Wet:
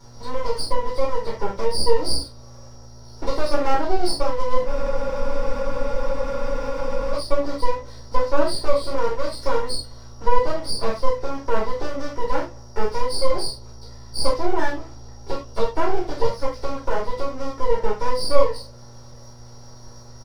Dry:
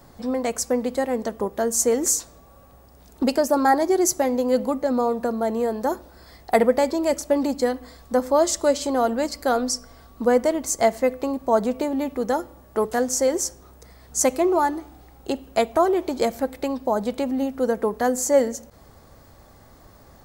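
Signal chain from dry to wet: nonlinear frequency compression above 4000 Hz 4:1; bell 2400 Hz -15 dB 0.79 oct; comb 2.1 ms, depth 88%; half-wave rectifier; buzz 120 Hz, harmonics 11, -49 dBFS -8 dB/oct; reverb, pre-delay 4 ms, DRR -7.5 dB; spectral freeze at 4.7, 2.45 s; mismatched tape noise reduction encoder only; gain -14 dB

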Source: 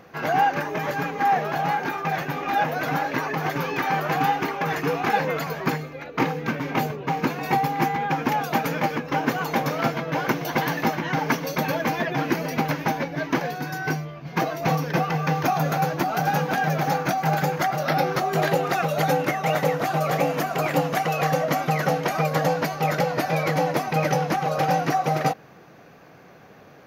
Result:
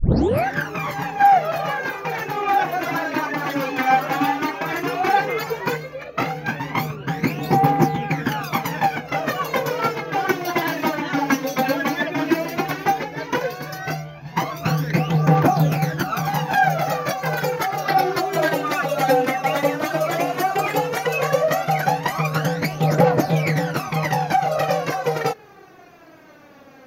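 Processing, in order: tape start at the beginning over 0.48 s; phaser 0.13 Hz, delay 3.9 ms, feedback 67%

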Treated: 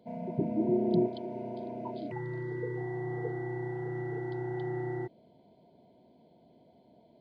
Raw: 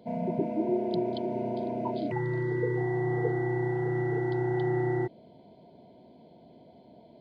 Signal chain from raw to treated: 0.37–1.06 bell 87 Hz -> 210 Hz +13.5 dB 2.8 oct; gain -7 dB

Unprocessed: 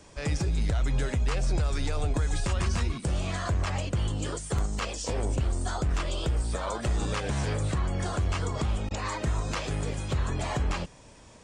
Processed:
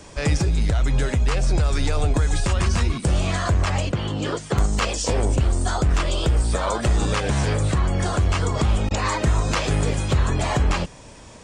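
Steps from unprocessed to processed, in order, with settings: vocal rider 0.5 s; 3.92–4.58 BPF 130–4500 Hz; gain +8 dB

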